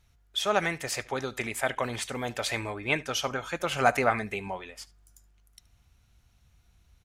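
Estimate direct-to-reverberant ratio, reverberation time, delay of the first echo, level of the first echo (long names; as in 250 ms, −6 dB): no reverb audible, no reverb audible, 74 ms, −22.0 dB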